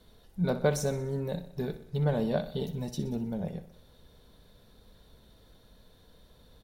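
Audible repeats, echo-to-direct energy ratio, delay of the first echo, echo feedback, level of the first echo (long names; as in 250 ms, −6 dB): 5, −11.5 dB, 62 ms, 55%, −13.0 dB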